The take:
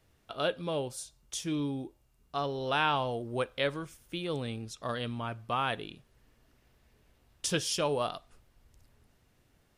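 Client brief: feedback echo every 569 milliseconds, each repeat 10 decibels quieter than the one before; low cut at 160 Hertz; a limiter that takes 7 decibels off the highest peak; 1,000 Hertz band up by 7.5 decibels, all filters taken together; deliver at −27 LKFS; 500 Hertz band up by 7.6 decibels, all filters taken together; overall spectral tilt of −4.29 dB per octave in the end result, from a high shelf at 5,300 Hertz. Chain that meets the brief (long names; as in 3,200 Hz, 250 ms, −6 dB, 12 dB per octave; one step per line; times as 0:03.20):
high-pass filter 160 Hz
parametric band 500 Hz +7 dB
parametric band 1,000 Hz +7.5 dB
high-shelf EQ 5,300 Hz −5 dB
brickwall limiter −16 dBFS
repeating echo 569 ms, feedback 32%, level −10 dB
level +3.5 dB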